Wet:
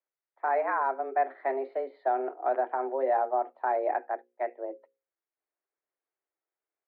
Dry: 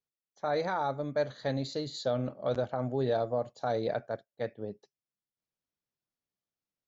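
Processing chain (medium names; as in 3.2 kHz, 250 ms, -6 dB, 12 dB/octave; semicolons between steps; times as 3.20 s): mistuned SSB +130 Hz 210–2100 Hz; hum notches 60/120/180/240/300/360/420/480/540 Hz; trim +3.5 dB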